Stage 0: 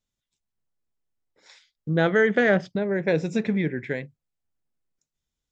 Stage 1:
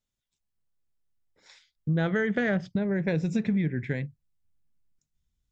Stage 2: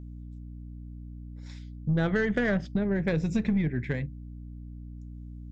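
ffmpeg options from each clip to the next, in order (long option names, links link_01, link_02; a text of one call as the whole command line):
ffmpeg -i in.wav -af "asubboost=boost=4.5:cutoff=210,acompressor=threshold=-20dB:ratio=6,volume=-2.5dB" out.wav
ffmpeg -i in.wav -af "aeval=exprs='0.211*(cos(1*acos(clip(val(0)/0.211,-1,1)))-cos(1*PI/2))+0.00944*(cos(6*acos(clip(val(0)/0.211,-1,1)))-cos(6*PI/2))':channel_layout=same,aeval=exprs='val(0)+0.01*(sin(2*PI*60*n/s)+sin(2*PI*2*60*n/s)/2+sin(2*PI*3*60*n/s)/3+sin(2*PI*4*60*n/s)/4+sin(2*PI*5*60*n/s)/5)':channel_layout=same" out.wav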